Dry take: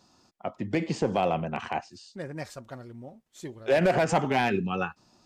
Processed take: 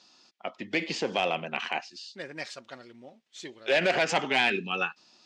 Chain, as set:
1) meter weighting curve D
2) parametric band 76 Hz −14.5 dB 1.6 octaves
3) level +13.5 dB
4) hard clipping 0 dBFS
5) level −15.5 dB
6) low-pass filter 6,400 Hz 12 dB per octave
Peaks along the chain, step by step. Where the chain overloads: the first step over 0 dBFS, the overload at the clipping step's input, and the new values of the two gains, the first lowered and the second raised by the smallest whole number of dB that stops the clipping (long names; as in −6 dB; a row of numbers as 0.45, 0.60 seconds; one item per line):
−8.0, −8.0, +5.5, 0.0, −15.5, −15.0 dBFS
step 3, 5.5 dB
step 3 +7.5 dB, step 5 −9.5 dB